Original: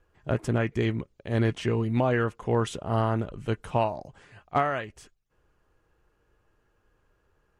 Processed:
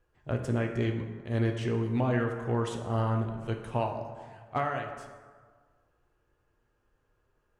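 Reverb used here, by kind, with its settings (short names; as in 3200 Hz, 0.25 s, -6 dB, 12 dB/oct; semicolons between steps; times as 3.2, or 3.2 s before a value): plate-style reverb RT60 1.6 s, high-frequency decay 0.5×, DRR 4 dB; gain -6 dB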